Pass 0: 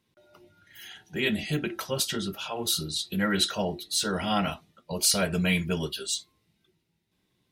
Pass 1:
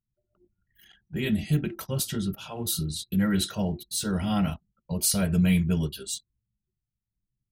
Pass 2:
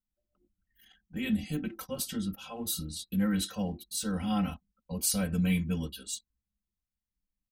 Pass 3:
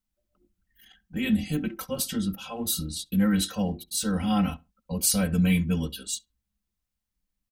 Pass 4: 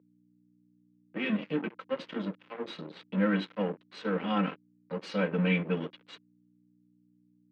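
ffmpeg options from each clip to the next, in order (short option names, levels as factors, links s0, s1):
-af "equalizer=f=5700:t=o:w=1.8:g=-7.5,anlmdn=0.0398,bass=f=250:g=14,treble=f=4000:g=10,volume=0.562"
-af "aecho=1:1:3.9:0.93,volume=0.447"
-filter_complex "[0:a]asplit=2[s0][s1];[s1]adelay=68,lowpass=f=1700:p=1,volume=0.0841,asplit=2[s2][s3];[s3]adelay=68,lowpass=f=1700:p=1,volume=0.21[s4];[s0][s2][s4]amix=inputs=3:normalize=0,volume=1.88"
-af "aeval=exprs='sgn(val(0))*max(abs(val(0))-0.0168,0)':c=same,aeval=exprs='val(0)+0.002*(sin(2*PI*60*n/s)+sin(2*PI*2*60*n/s)/2+sin(2*PI*3*60*n/s)/3+sin(2*PI*4*60*n/s)/4+sin(2*PI*5*60*n/s)/5)':c=same,highpass=f=200:w=0.5412,highpass=f=200:w=1.3066,equalizer=f=230:t=q:w=4:g=-8,equalizer=f=480:t=q:w=4:g=4,equalizer=f=730:t=q:w=4:g=-7,lowpass=f=2800:w=0.5412,lowpass=f=2800:w=1.3066,volume=1.33"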